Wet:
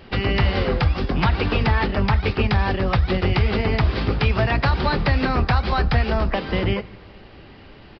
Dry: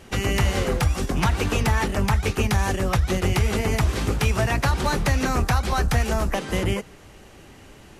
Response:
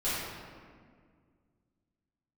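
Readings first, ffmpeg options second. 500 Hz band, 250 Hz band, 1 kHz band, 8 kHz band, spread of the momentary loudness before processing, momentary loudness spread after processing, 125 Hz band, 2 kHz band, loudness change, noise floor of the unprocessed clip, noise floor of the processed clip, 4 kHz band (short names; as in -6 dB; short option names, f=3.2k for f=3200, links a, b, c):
+2.5 dB, +2.5 dB, +2.0 dB, under -25 dB, 3 LU, 3 LU, +2.0 dB, +2.0 dB, +2.0 dB, -47 dBFS, -44 dBFS, +2.0 dB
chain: -filter_complex "[0:a]aresample=11025,aresample=44100,asplit=2[a][b];[1:a]atrim=start_sample=2205[c];[b][c]afir=irnorm=-1:irlink=0,volume=-29dB[d];[a][d]amix=inputs=2:normalize=0,volume=2dB"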